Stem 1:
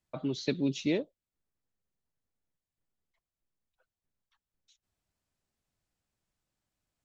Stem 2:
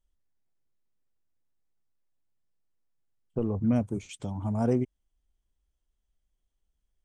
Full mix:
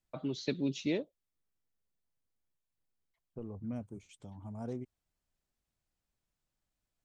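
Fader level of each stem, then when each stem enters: -3.5 dB, -14.5 dB; 0.00 s, 0.00 s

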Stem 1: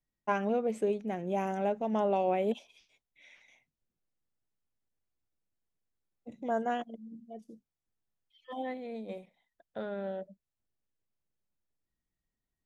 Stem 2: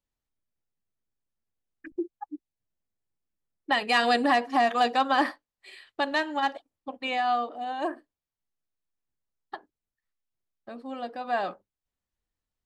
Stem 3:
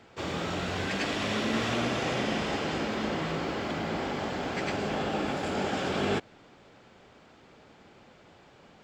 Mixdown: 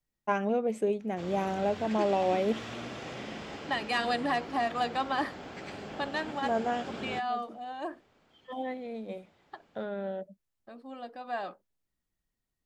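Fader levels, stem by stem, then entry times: +1.5 dB, -7.0 dB, -11.0 dB; 0.00 s, 0.00 s, 1.00 s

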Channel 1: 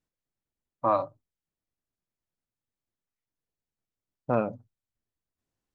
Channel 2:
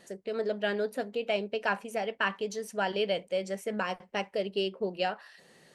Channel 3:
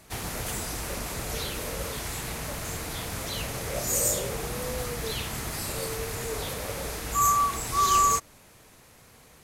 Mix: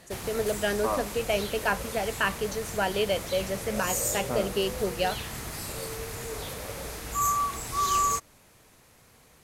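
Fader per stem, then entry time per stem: -5.5 dB, +2.5 dB, -3.5 dB; 0.00 s, 0.00 s, 0.00 s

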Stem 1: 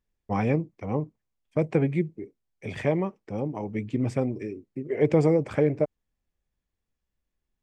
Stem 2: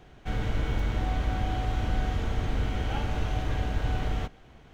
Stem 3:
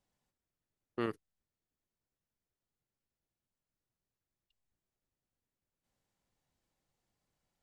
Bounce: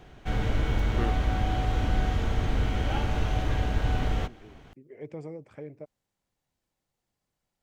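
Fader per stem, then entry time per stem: -19.0 dB, +2.0 dB, +1.0 dB; 0.00 s, 0.00 s, 0.00 s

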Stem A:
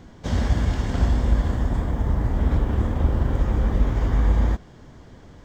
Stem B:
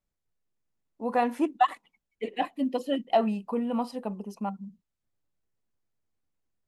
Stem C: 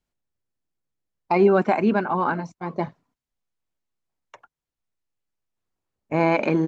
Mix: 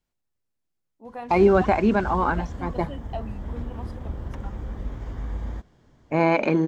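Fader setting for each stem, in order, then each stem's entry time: -12.0 dB, -11.5 dB, 0.0 dB; 1.05 s, 0.00 s, 0.00 s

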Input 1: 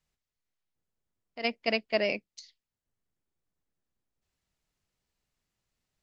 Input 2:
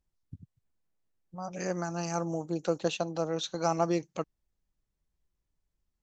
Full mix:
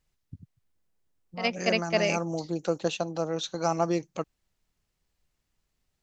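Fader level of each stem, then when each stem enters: +2.0 dB, +1.5 dB; 0.00 s, 0.00 s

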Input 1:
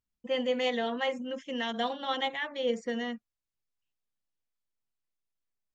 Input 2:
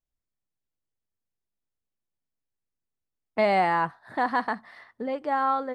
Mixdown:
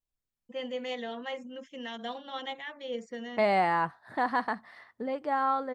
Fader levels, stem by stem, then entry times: -6.5 dB, -3.0 dB; 0.25 s, 0.00 s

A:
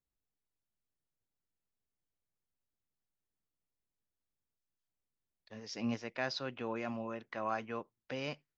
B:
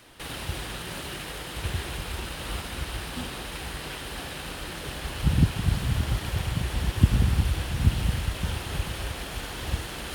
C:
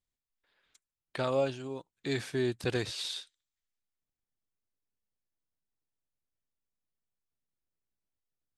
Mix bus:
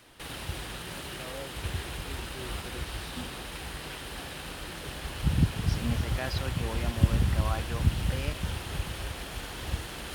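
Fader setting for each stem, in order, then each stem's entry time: +0.5 dB, -3.5 dB, -13.5 dB; 0.00 s, 0.00 s, 0.00 s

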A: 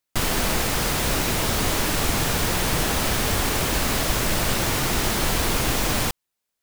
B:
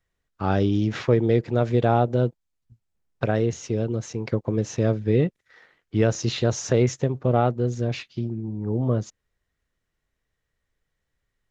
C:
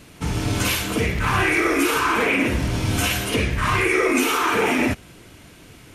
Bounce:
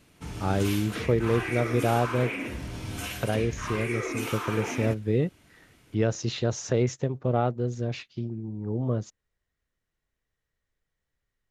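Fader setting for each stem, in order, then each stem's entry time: mute, -4.5 dB, -13.5 dB; mute, 0.00 s, 0.00 s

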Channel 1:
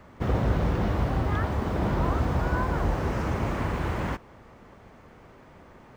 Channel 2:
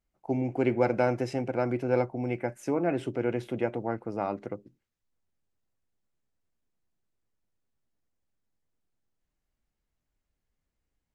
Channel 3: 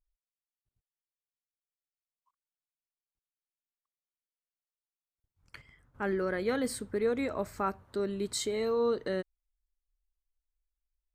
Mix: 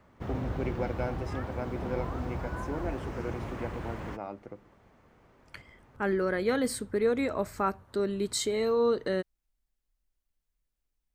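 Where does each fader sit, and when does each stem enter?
-10.0 dB, -8.5 dB, +3.0 dB; 0.00 s, 0.00 s, 0.00 s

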